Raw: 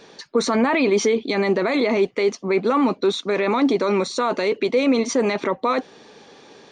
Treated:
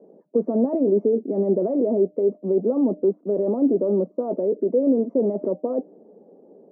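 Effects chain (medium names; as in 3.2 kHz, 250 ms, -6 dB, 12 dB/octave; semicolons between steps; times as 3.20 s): elliptic band-pass 180–630 Hz, stop band 70 dB; de-hum 303.3 Hz, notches 2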